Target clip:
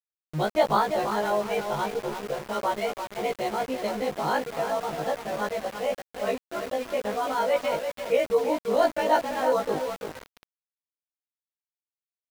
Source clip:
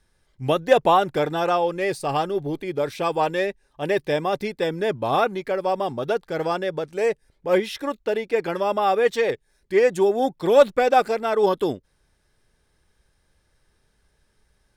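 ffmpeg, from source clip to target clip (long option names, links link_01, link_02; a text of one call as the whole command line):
ffmpeg -i in.wav -filter_complex "[0:a]afftfilt=real='re':imag='-im':win_size=2048:overlap=0.75,lowshelf=frequency=350:gain=5,anlmdn=25.1,asetrate=52920,aresample=44100,asplit=2[link_01][link_02];[link_02]adelay=337,lowpass=frequency=2900:poles=1,volume=-7dB,asplit=2[link_03][link_04];[link_04]adelay=337,lowpass=frequency=2900:poles=1,volume=0.33,asplit=2[link_05][link_06];[link_06]adelay=337,lowpass=frequency=2900:poles=1,volume=0.33,asplit=2[link_07][link_08];[link_08]adelay=337,lowpass=frequency=2900:poles=1,volume=0.33[link_09];[link_03][link_05][link_07][link_09]amix=inputs=4:normalize=0[link_10];[link_01][link_10]amix=inputs=2:normalize=0,aeval=exprs='val(0)*gte(abs(val(0)),0.0251)':channel_layout=same,volume=-2.5dB" out.wav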